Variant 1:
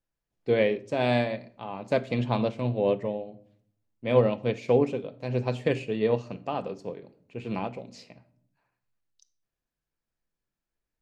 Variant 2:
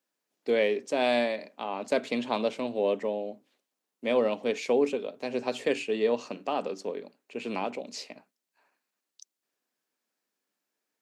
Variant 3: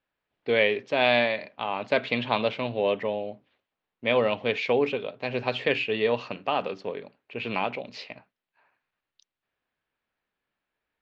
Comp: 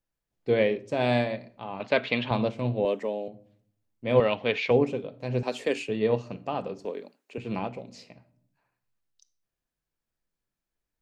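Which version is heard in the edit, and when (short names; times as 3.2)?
1
1.8–2.31 from 3
2.85–3.28 from 2
4.2–4.71 from 3
5.43–5.89 from 2
6.85–7.38 from 2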